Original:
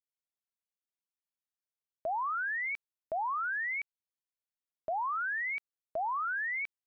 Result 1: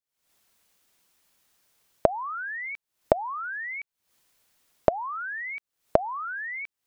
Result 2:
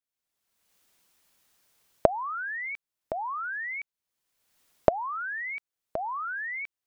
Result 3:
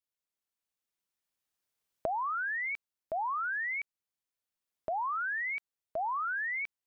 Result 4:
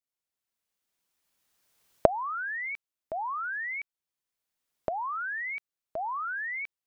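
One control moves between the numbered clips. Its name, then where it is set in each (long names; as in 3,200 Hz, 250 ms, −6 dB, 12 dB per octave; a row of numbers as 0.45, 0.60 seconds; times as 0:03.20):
camcorder AGC, rising by: 86, 35, 5.4, 14 dB per second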